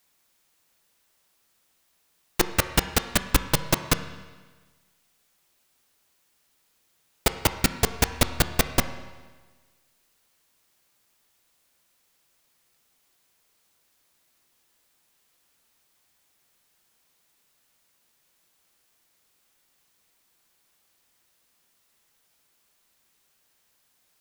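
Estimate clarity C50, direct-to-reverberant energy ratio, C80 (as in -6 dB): 11.0 dB, 9.0 dB, 12.5 dB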